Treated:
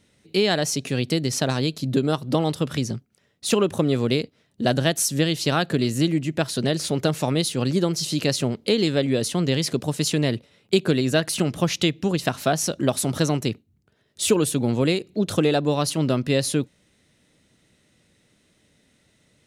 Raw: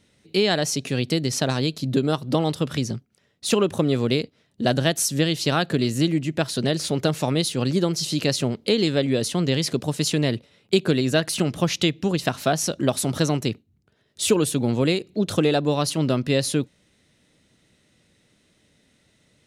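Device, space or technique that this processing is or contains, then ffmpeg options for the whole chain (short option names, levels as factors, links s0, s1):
exciter from parts: -filter_complex "[0:a]asplit=2[s0][s1];[s1]highpass=2300,asoftclip=type=tanh:threshold=0.075,highpass=4500,volume=0.224[s2];[s0][s2]amix=inputs=2:normalize=0"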